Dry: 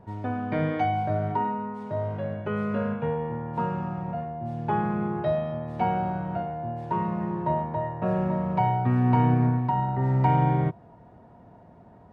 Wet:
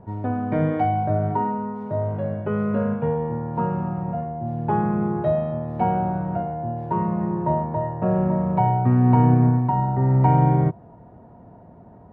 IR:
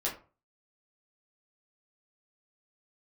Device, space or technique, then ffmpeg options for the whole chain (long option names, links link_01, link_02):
through cloth: -af "highshelf=frequency=2200:gain=-17.5,volume=5.5dB"